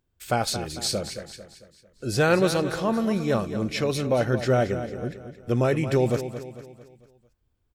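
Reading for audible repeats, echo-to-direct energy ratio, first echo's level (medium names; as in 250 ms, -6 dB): 4, -10.0 dB, -11.0 dB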